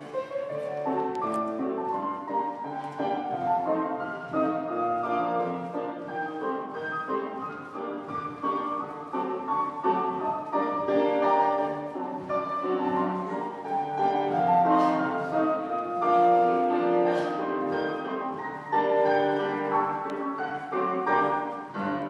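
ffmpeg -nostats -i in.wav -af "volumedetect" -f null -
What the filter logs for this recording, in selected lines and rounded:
mean_volume: -27.4 dB
max_volume: -11.9 dB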